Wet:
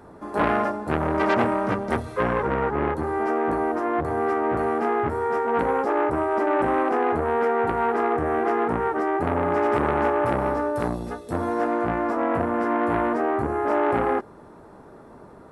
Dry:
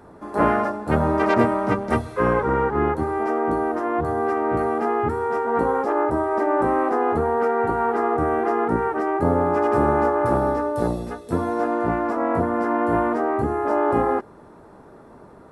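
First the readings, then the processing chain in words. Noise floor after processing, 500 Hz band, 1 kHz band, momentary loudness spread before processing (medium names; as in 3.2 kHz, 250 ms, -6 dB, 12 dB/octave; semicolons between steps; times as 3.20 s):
-46 dBFS, -2.0 dB, -1.5 dB, 4 LU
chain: transformer saturation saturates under 1.2 kHz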